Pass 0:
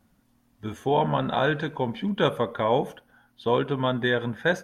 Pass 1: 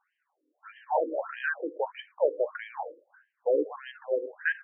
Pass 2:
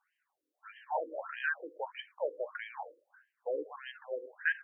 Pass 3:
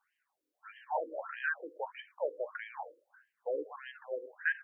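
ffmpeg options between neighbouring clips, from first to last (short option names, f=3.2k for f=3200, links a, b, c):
-af "afreqshift=27,afftfilt=real='re*between(b*sr/1024,380*pow(2300/380,0.5+0.5*sin(2*PI*1.6*pts/sr))/1.41,380*pow(2300/380,0.5+0.5*sin(2*PI*1.6*pts/sr))*1.41)':imag='im*between(b*sr/1024,380*pow(2300/380,0.5+0.5*sin(2*PI*1.6*pts/sr))/1.41,380*pow(2300/380,0.5+0.5*sin(2*PI*1.6*pts/sr))*1.41)':win_size=1024:overlap=0.75"
-af "equalizer=f=260:w=0.39:g=-14"
-filter_complex "[0:a]acrossover=split=2800[a][b];[b]acompressor=threshold=-60dB:ratio=4:attack=1:release=60[c];[a][c]amix=inputs=2:normalize=0"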